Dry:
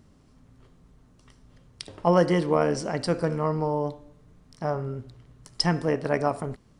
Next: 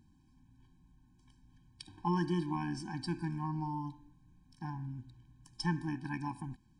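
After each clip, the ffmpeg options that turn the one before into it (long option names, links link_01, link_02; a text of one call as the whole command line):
ffmpeg -i in.wav -af "afftfilt=real='re*eq(mod(floor(b*sr/1024/370),2),0)':imag='im*eq(mod(floor(b*sr/1024/370),2),0)':win_size=1024:overlap=0.75,volume=-8dB" out.wav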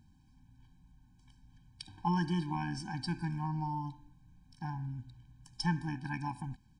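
ffmpeg -i in.wav -af "aecho=1:1:1.3:0.54" out.wav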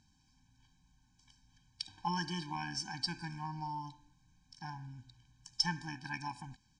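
ffmpeg -i in.wav -af "lowpass=frequency=6300:width_type=q:width=2.4,tiltshelf=frequency=680:gain=-5.5,volume=-3.5dB" out.wav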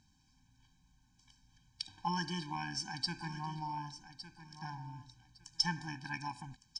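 ffmpeg -i in.wav -af "aecho=1:1:1159|2318:0.224|0.0448" out.wav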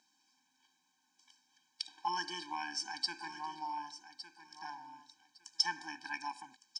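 ffmpeg -i in.wav -af "highpass=frequency=330:width=0.5412,highpass=frequency=330:width=1.3066,volume=1dB" out.wav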